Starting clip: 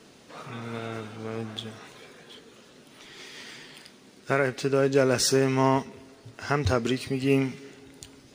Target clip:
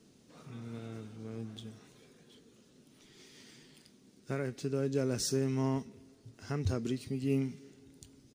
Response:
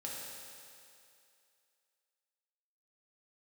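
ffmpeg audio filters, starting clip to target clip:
-af "firequalizer=gain_entry='entry(210,0);entry(600,-10);entry(900,-12);entry(1800,-12);entry(5900,-4)':delay=0.05:min_phase=1,volume=-5.5dB"

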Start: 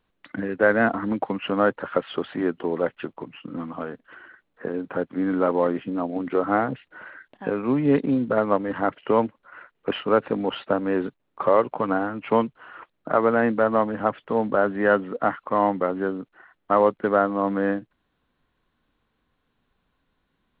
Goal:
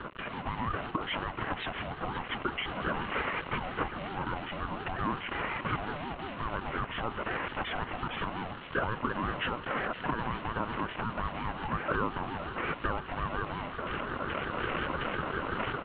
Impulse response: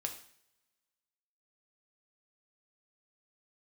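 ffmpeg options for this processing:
-af "aeval=exprs='val(0)+0.5*0.0668*sgn(val(0))':channel_layout=same,afwtdn=0.0282,highshelf=frequency=2200:gain=-10,dynaudnorm=framelen=620:gausssize=3:maxgain=10.5dB,alimiter=limit=-14.5dB:level=0:latency=1:release=230,acompressor=threshold=-28dB:ratio=2,aecho=1:1:679|1358|2037|2716|3395:0.211|0.108|0.055|0.028|0.0143,atempo=1.3,aresample=8000,acrusher=bits=4:mode=log:mix=0:aa=0.000001,aresample=44100,afreqshift=-78,highpass=430,equalizer=frequency=450:width_type=q:width=4:gain=-4,equalizer=frequency=650:width_type=q:width=4:gain=7,equalizer=frequency=940:width_type=q:width=4:gain=5,equalizer=frequency=1400:width_type=q:width=4:gain=-8,equalizer=frequency=2400:width_type=q:width=4:gain=8,lowpass=frequency=2800:width=0.5412,lowpass=frequency=2800:width=1.3066,aeval=exprs='val(0)*sin(2*PI*480*n/s+480*0.25/5.6*sin(2*PI*5.6*n/s))':channel_layout=same"

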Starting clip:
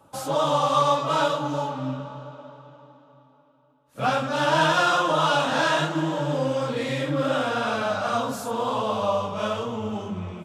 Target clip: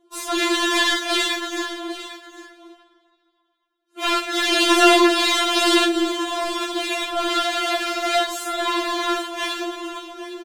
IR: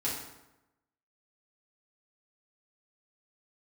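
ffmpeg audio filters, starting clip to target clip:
-filter_complex "[0:a]aeval=exprs='0.376*(cos(1*acos(clip(val(0)/0.376,-1,1)))-cos(1*PI/2))+0.0944*(cos(6*acos(clip(val(0)/0.376,-1,1)))-cos(6*PI/2))+0.0211*(cos(7*acos(clip(val(0)/0.376,-1,1)))-cos(7*PI/2))':channel_layout=same,highpass=frequency=180:width=0.5412,highpass=frequency=180:width=1.3066,lowshelf=frequency=550:width_type=q:width=1.5:gain=9.5,asplit=2[link_01][link_02];[link_02]acontrast=76,volume=-1dB[link_03];[link_01][link_03]amix=inputs=2:normalize=0,aexciter=amount=1.4:drive=8.2:freq=3000,adynamicsmooth=sensitivity=7:basefreq=3000,equalizer=frequency=270:width_type=o:width=0.97:gain=-13,asplit=2[link_04][link_05];[link_05]aecho=0:1:804:0.188[link_06];[link_04][link_06]amix=inputs=2:normalize=0,afftfilt=real='re*4*eq(mod(b,16),0)':imag='im*4*eq(mod(b,16),0)':win_size=2048:overlap=0.75,volume=-2.5dB"

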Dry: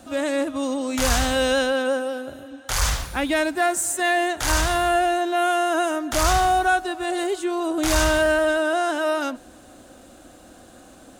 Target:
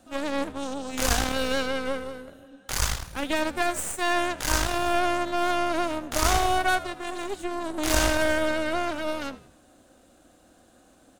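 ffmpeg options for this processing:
ffmpeg -i in.wav -filter_complex "[0:a]aeval=exprs='0.447*(cos(1*acos(clip(val(0)/0.447,-1,1)))-cos(1*PI/2))+0.112*(cos(3*acos(clip(val(0)/0.447,-1,1)))-cos(3*PI/2))+0.00708*(cos(5*acos(clip(val(0)/0.447,-1,1)))-cos(5*PI/2))+0.0282*(cos(6*acos(clip(val(0)/0.447,-1,1)))-cos(6*PI/2))+0.00562*(cos(7*acos(clip(val(0)/0.447,-1,1)))-cos(7*PI/2))':channel_layout=same,asplit=5[link_01][link_02][link_03][link_04][link_05];[link_02]adelay=80,afreqshift=-75,volume=-17dB[link_06];[link_03]adelay=160,afreqshift=-150,volume=-24.5dB[link_07];[link_04]adelay=240,afreqshift=-225,volume=-32.1dB[link_08];[link_05]adelay=320,afreqshift=-300,volume=-39.6dB[link_09];[link_01][link_06][link_07][link_08][link_09]amix=inputs=5:normalize=0,volume=2dB" out.wav

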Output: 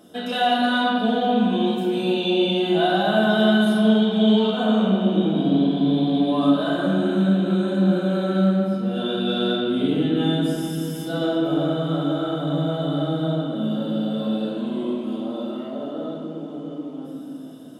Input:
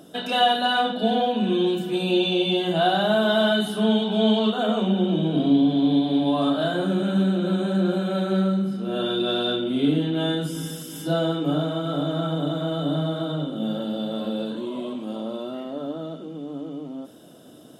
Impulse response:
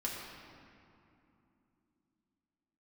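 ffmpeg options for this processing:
-filter_complex "[0:a]asettb=1/sr,asplit=3[link_01][link_02][link_03];[link_01]atrim=end=0.514[link_04];[link_02]atrim=start=0.51:end=0.93,asetpts=PTS-STARTPTS,afade=type=in:duration=0.004:curve=qsin,afade=type=out:start_time=0.416:duration=0.004:curve=qsin,aecho=1:1:3.2:0.52,atrim=end_sample=18522[link_05];[link_03]atrim=start=0.926[link_06];[link_04][link_05]acrossfade=duration=0.004:curve1=hsin:curve2=qsin[link_07];[link_07][link_06]acrossfade=duration=0.004:curve1=qsin:curve2=hsin[link_08];[1:a]atrim=start_sample=2205[link_09];[link_08][link_09]afir=irnorm=-1:irlink=0,volume=-2dB"

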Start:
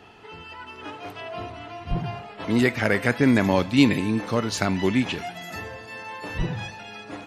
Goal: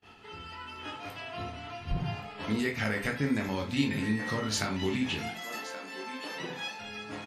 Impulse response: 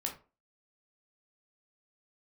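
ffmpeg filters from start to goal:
-filter_complex "[0:a]aecho=1:1:1125:0.141,asettb=1/sr,asplit=3[link_01][link_02][link_03];[link_01]atrim=end=4.024[link_04];[link_02]atrim=start=4.02:end=4.44,asetpts=PTS-STARTPTS,afade=type=in:duration=0.004:curve=qsin,afade=type=out:start_time=0.416:duration=0.004:curve=qsin,aeval=exprs='val(0)+0.02*sin(2*PI*1900*n/s)':channel_layout=same[link_05];[link_03]atrim=start=4.436[link_06];[link_04][link_05]acrossfade=duration=0.004:curve1=hsin:curve2=qsin[link_07];[link_07][link_06]acrossfade=duration=0.004:curve1=qsin:curve2=hsin,asettb=1/sr,asplit=3[link_08][link_09][link_10];[link_08]atrim=end=5.334[link_11];[link_09]atrim=start=5.33:end=6.79,asetpts=PTS-STARTPTS,afade=type=in:duration=0.004:curve=qsin,afade=type=out:start_time=1.456:duration=0.004:curve=qsin,highpass=frequency=250:width=0.5412,highpass=frequency=250:width=1.3066[link_12];[link_10]atrim=start=6.786[link_13];[link_11][link_12]acrossfade=duration=0.004:curve1=hsin:curve2=qsin[link_14];[link_14][link_13]acrossfade=duration=0.004:curve1=qsin:curve2=hsin,acompressor=threshold=-24dB:ratio=4,equalizer=frequency=520:width=0.37:gain=-6.5,agate=range=-28dB:threshold=-53dB:ratio=16:detection=peak[link_15];[1:a]atrim=start_sample=2205,afade=type=out:start_time=0.14:duration=0.01,atrim=end_sample=6615[link_16];[link_15][link_16]afir=irnorm=-1:irlink=0"

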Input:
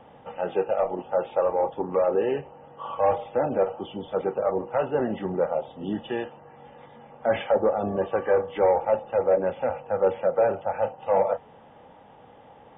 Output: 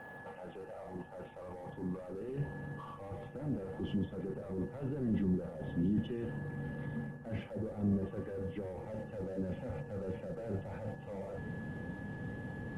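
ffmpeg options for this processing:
ffmpeg -i in.wav -filter_complex "[0:a]aeval=exprs='val(0)+0.00355*sin(2*PI*1700*n/s)':channel_layout=same,highpass=frequency=140:poles=1,bass=frequency=250:gain=3,treble=frequency=4000:gain=-13,areverse,acompressor=threshold=-32dB:ratio=6,areverse,alimiter=level_in=12dB:limit=-24dB:level=0:latency=1:release=14,volume=-12dB,asplit=2[link_01][link_02];[link_02]acrusher=bits=3:mode=log:mix=0:aa=0.000001,volume=-6.5dB[link_03];[link_01][link_03]amix=inputs=2:normalize=0,asoftclip=type=tanh:threshold=-34.5dB,asubboost=boost=11.5:cutoff=220,volume=-3dB" -ar 48000 -c:a libopus -b:a 32k out.opus

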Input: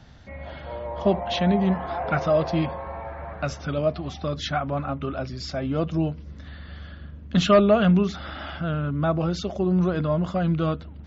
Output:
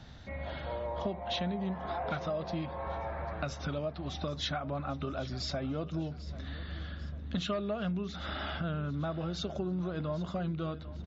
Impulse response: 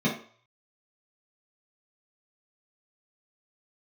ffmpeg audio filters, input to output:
-af "acompressor=threshold=-31dB:ratio=6,equalizer=frequency=3800:width=7.4:gain=7,aecho=1:1:794|1588|2382:0.141|0.0565|0.0226,volume=-1.5dB"

